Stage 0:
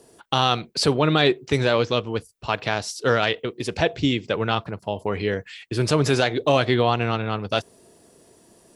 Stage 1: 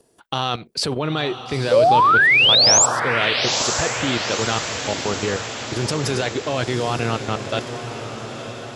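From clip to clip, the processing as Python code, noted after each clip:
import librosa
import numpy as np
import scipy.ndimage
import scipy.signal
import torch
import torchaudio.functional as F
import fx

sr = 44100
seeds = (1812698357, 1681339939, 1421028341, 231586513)

y = fx.level_steps(x, sr, step_db=13)
y = fx.spec_paint(y, sr, seeds[0], shape='rise', start_s=1.71, length_s=1.15, low_hz=480.0, high_hz=7900.0, level_db=-17.0)
y = fx.echo_diffused(y, sr, ms=926, feedback_pct=60, wet_db=-8.5)
y = y * 10.0 ** (3.5 / 20.0)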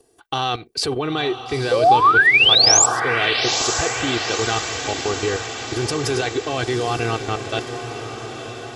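y = x + 0.62 * np.pad(x, (int(2.6 * sr / 1000.0), 0))[:len(x)]
y = y * 10.0 ** (-1.0 / 20.0)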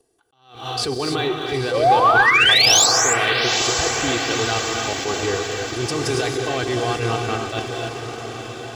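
y = fx.rev_gated(x, sr, seeds[1], gate_ms=320, shape='rising', drr_db=3.5)
y = fx.leveller(y, sr, passes=1)
y = fx.attack_slew(y, sr, db_per_s=110.0)
y = y * 10.0 ** (-5.0 / 20.0)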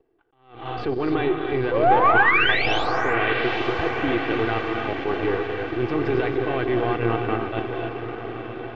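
y = np.where(x < 0.0, 10.0 ** (-7.0 / 20.0) * x, x)
y = scipy.signal.sosfilt(scipy.signal.butter(4, 2600.0, 'lowpass', fs=sr, output='sos'), y)
y = fx.peak_eq(y, sr, hz=330.0, db=6.5, octaves=0.53)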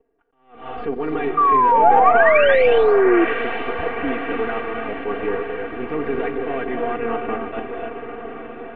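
y = scipy.signal.sosfilt(scipy.signal.butter(4, 2700.0, 'lowpass', fs=sr, output='sos'), x)
y = y + 0.9 * np.pad(y, (int(4.3 * sr / 1000.0), 0))[:len(y)]
y = fx.spec_paint(y, sr, seeds[2], shape='fall', start_s=1.37, length_s=1.88, low_hz=330.0, high_hz=1200.0, level_db=-12.0)
y = y * 10.0 ** (-2.5 / 20.0)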